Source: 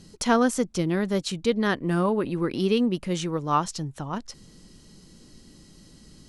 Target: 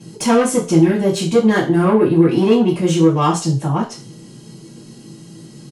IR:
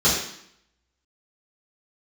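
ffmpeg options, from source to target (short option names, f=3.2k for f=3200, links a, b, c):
-filter_complex "[0:a]atempo=1.1,asoftclip=type=tanh:threshold=-21.5dB[a];[1:a]atrim=start_sample=2205,asetrate=88200,aresample=44100[b];[a][b]afir=irnorm=-1:irlink=0,volume=-2.5dB"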